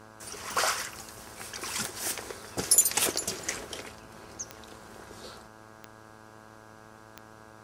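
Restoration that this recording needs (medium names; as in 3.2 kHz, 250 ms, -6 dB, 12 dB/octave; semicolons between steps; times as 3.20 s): de-click; de-hum 109.2 Hz, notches 15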